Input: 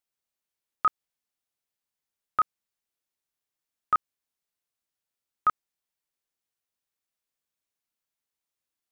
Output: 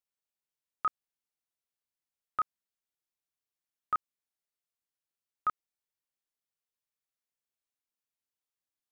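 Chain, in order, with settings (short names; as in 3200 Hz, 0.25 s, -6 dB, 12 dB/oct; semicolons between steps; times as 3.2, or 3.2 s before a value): gain -7 dB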